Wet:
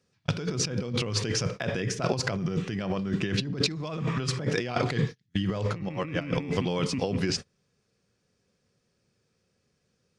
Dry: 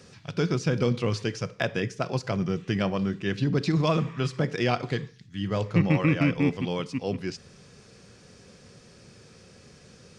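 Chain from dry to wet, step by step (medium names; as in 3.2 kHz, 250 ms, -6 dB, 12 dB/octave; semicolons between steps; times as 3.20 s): gate -40 dBFS, range -33 dB; compressor with a negative ratio -34 dBFS, ratio -1; trim +4.5 dB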